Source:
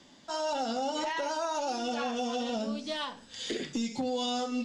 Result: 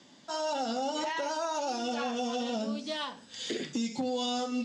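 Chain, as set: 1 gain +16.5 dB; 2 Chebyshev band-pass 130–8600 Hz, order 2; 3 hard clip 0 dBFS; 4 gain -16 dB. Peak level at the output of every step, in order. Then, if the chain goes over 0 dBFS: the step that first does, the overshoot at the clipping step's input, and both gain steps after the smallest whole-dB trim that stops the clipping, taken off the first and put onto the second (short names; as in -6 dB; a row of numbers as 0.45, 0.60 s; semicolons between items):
-7.5, -6.0, -6.0, -22.0 dBFS; no overload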